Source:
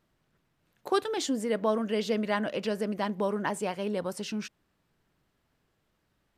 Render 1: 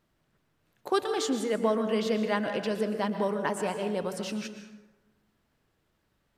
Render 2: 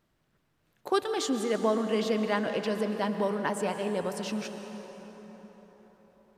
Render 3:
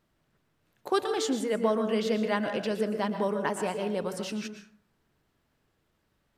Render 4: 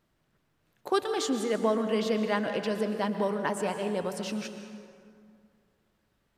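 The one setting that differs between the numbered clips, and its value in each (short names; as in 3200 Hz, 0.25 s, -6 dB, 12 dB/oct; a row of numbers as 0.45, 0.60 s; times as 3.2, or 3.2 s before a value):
plate-style reverb, RT60: 1.1, 5, 0.52, 2.3 s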